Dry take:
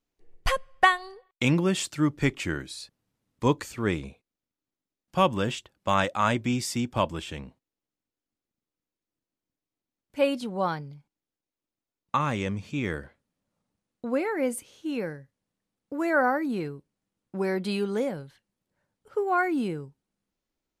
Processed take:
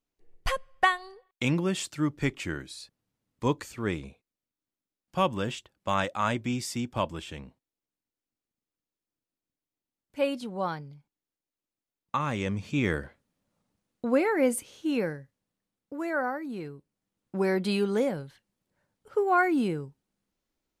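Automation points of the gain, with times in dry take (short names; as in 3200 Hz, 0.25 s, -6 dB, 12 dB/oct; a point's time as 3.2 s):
12.2 s -3.5 dB
12.78 s +3 dB
14.96 s +3 dB
16.42 s -8 dB
17.35 s +1.5 dB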